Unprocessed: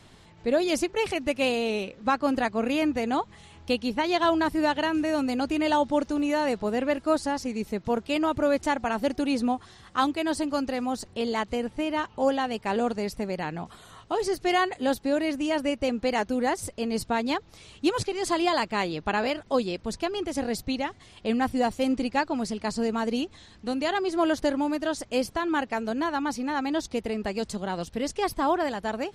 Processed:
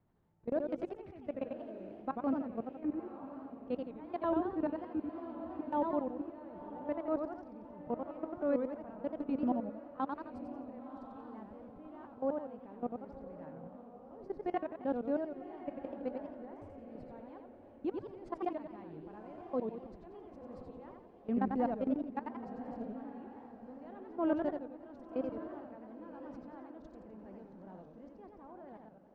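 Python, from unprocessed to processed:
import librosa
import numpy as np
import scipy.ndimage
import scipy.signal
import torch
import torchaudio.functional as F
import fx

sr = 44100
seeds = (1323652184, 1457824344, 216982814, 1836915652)

y = fx.fade_out_tail(x, sr, length_s=2.11)
y = scipy.signal.sosfilt(scipy.signal.butter(2, 1100.0, 'lowpass', fs=sr, output='sos'), y)
y = fx.peak_eq(y, sr, hz=180.0, db=3.5, octaves=1.4)
y = fx.level_steps(y, sr, step_db=23)
y = fx.transient(y, sr, attack_db=-5, sustain_db=-1)
y = fx.echo_diffused(y, sr, ms=1065, feedback_pct=43, wet_db=-11.5)
y = fx.echo_warbled(y, sr, ms=87, feedback_pct=46, rate_hz=2.8, cents=218, wet_db=-5.0)
y = y * 10.0 ** (-6.0 / 20.0)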